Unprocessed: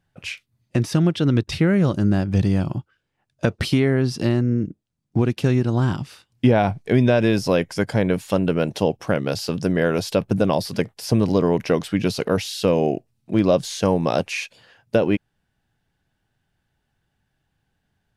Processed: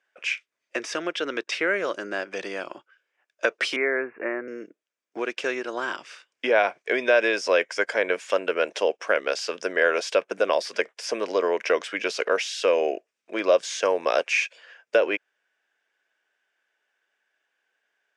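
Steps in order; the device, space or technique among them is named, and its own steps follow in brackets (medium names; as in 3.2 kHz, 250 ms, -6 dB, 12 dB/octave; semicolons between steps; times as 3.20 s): phone speaker on a table (cabinet simulation 460–7500 Hz, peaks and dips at 810 Hz -8 dB, 1.6 kHz +5 dB, 2.3 kHz +5 dB, 4.2 kHz -8 dB); 3.76–4.48 s: steep low-pass 2.4 kHz 96 dB/octave; trim +1.5 dB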